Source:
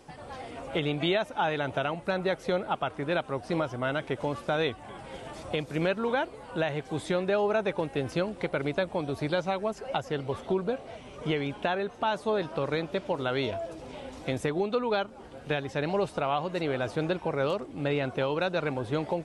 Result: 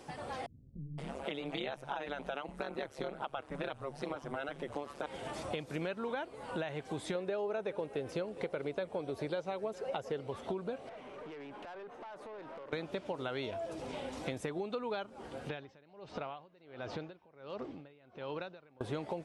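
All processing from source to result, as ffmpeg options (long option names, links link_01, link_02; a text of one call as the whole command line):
ffmpeg -i in.wav -filter_complex "[0:a]asettb=1/sr,asplit=3[link_01][link_02][link_03];[link_01]atrim=end=0.464[link_04];[link_02]atrim=start=0.46:end=5.06,asetpts=PTS-STARTPTS,afade=type=in:duration=0.004:curve=qsin,afade=type=out:start_time=4.596:duration=0.004:curve=qsin,tremolo=f=140:d=1,acrossover=split=170[link_05][link_06];[link_06]adelay=520[link_07];[link_05][link_07]amix=inputs=2:normalize=0,atrim=end_sample=202860[link_08];[link_03]atrim=start=5.056[link_09];[link_04][link_08]acrossfade=duration=0.004:curve1=hsin:curve2=qsin[link_10];[link_10][link_09]acrossfade=duration=0.004:curve1=qsin:curve2=hsin,asettb=1/sr,asplit=3[link_11][link_12][link_13];[link_11]atrim=end=7.154[link_14];[link_12]atrim=start=7.15:end=10.27,asetpts=PTS-STARTPTS,afade=type=in:duration=0.004:curve=qsin,afade=type=out:start_time=3.116:duration=0.004:curve=qsin,equalizer=frequency=470:width_type=o:width=0.62:gain=7.5,aecho=1:1:410:0.0891,atrim=end_sample=137592[link_15];[link_13]atrim=start=10.266[link_16];[link_14][link_15]acrossfade=duration=0.004:curve1=hsin:curve2=qsin[link_17];[link_17][link_16]acrossfade=duration=0.004:curve1=qsin:curve2=hsin,asettb=1/sr,asplit=3[link_18][link_19][link_20];[link_18]atrim=end=10.894[link_21];[link_19]atrim=start=10.89:end=12.73,asetpts=PTS-STARTPTS,afade=type=in:duration=0.004:curve=qsin,afade=type=out:start_time=1.836:duration=0.004:curve=qsin,acrossover=split=230 2400:gain=0.224 1 0.224[link_22][link_23][link_24];[link_22][link_23][link_24]amix=inputs=3:normalize=0,acompressor=threshold=-40dB:ratio=16:attack=3.2:release=140:knee=1:detection=peak,aeval=exprs='(tanh(158*val(0)+0.3)-tanh(0.3))/158':channel_layout=same[link_25];[link_20]atrim=start=12.726[link_26];[link_21][link_25]acrossfade=duration=0.004:curve1=hsin:curve2=qsin[link_27];[link_27][link_26]acrossfade=duration=0.004:curve1=qsin:curve2=hsin,asettb=1/sr,asplit=3[link_28][link_29][link_30];[link_28]atrim=end=15.494[link_31];[link_29]atrim=start=15.49:end=18.81,asetpts=PTS-STARTPTS,afade=type=in:duration=0.004:curve=qsin,afade=type=out:start_time=3.316:duration=0.004:curve=qsin,lowpass=frequency=5500:width=0.5412,lowpass=frequency=5500:width=1.3066,acompressor=threshold=-37dB:ratio=2.5:attack=3.2:release=140:knee=1:detection=peak,aeval=exprs='val(0)*pow(10,-27*(0.5-0.5*cos(2*PI*1.4*n/s))/20)':channel_layout=same[link_32];[link_30]atrim=start=18.806[link_33];[link_31][link_32]acrossfade=duration=0.004:curve1=hsin:curve2=qsin[link_34];[link_34][link_33]acrossfade=duration=0.004:curve1=qsin:curve2=hsin,lowshelf=frequency=70:gain=-10,acompressor=threshold=-38dB:ratio=4,volume=1.5dB" out.wav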